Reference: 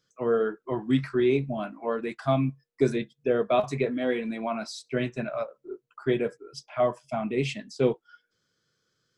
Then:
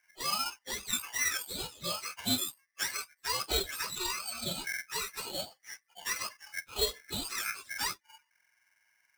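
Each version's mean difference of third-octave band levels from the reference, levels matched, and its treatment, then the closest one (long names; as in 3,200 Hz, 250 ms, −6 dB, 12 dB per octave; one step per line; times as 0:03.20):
19.0 dB: frequency axis turned over on the octave scale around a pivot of 1,200 Hz
dynamic equaliser 1,800 Hz, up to +5 dB, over −45 dBFS, Q 2.7
in parallel at +2 dB: downward compressor, threshold −37 dBFS, peak gain reduction 17 dB
on the sum: ring modulator with a square carrier 1,900 Hz
level −7.5 dB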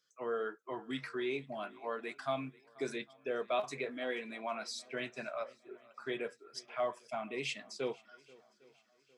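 6.0 dB: in parallel at −1.5 dB: brickwall limiter −19.5 dBFS, peak gain reduction 9 dB
on the sum: low-pass filter 1,000 Hz 6 dB per octave
first difference
feedback echo with a long and a short gap by turns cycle 806 ms, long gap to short 1.5 to 1, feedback 36%, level −23.5 dB
level +8.5 dB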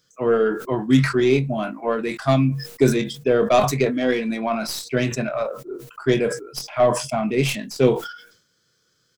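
4.5 dB: stylus tracing distortion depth 0.049 ms
high-shelf EQ 5,000 Hz +7.5 dB
double-tracking delay 23 ms −12 dB
level that may fall only so fast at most 93 dB per second
level +6 dB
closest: third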